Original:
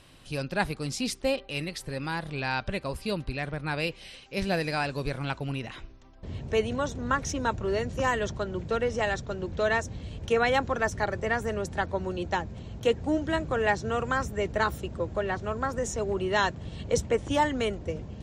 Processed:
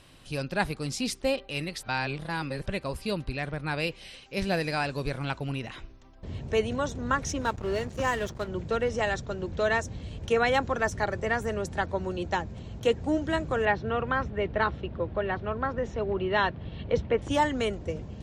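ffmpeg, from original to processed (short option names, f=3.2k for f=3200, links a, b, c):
-filter_complex "[0:a]asettb=1/sr,asplit=3[a][b][c];[a]atrim=end=7.414[d];[b]atrim=start=7.41:end=8.48,asetpts=PTS-STARTPTS,afade=t=in:d=0.004:c=qsin,afade=t=out:st=1.066:d=0.004:c=qsin,aeval=exprs='sgn(val(0))*max(abs(val(0))-0.00891,0)':c=same[e];[c]atrim=start=8.476[f];[d][e]acrossfade=d=0.004:c1=hsin:c2=qsin[g];[g][f]acrossfade=d=0.004:c1=qsin:c2=hsin,asettb=1/sr,asplit=3[h][i][j];[h]atrim=end=13.654[k];[i]atrim=start=13.65:end=17.22,asetpts=PTS-STARTPTS,afade=t=in:d=0.004:c=qsin,afade=t=out:st=3.566:d=0.004:c=qsin,lowpass=f=3.7k:w=0.5412,lowpass=f=3.7k:w=1.3066[l];[j]atrim=start=17.216[m];[k][l]acrossfade=d=0.004:c1=hsin:c2=qsin[n];[n][m]acrossfade=d=0.004:c1=qsin:c2=hsin,asplit=3[o][p][q];[o]atrim=end=1.832[r];[p]atrim=start=1.828:end=2.662,asetpts=PTS-STARTPTS,areverse[s];[q]atrim=start=2.658[t];[r][s]acrossfade=d=0.004:c1=hsin:c2=hsin[u];[u][t]acrossfade=d=0.004:c1=hsin:c2=hsin"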